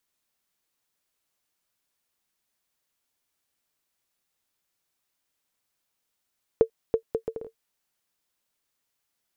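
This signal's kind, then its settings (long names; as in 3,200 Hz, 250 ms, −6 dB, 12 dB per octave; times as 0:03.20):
bouncing ball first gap 0.33 s, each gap 0.63, 451 Hz, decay 89 ms −8 dBFS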